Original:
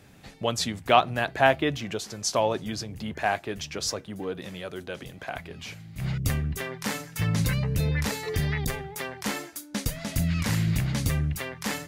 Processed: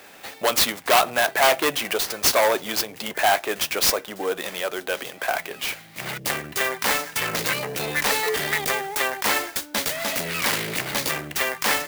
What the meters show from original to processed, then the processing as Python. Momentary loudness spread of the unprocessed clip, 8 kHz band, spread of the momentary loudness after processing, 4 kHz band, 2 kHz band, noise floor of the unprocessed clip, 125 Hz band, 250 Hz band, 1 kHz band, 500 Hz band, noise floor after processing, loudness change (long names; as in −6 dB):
15 LU, +9.0 dB, 10 LU, +9.0 dB, +8.5 dB, −48 dBFS, −13.0 dB, −3.5 dB, +5.0 dB, +5.0 dB, −45 dBFS, +5.5 dB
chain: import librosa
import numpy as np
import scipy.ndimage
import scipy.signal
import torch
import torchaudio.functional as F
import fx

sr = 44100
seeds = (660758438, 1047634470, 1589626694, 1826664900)

p1 = fx.fold_sine(x, sr, drive_db=18, ceiling_db=-4.0)
p2 = x + (p1 * librosa.db_to_amplitude(-11.0))
p3 = scipy.signal.sosfilt(scipy.signal.butter(2, 540.0, 'highpass', fs=sr, output='sos'), p2)
y = fx.clock_jitter(p3, sr, seeds[0], jitter_ms=0.031)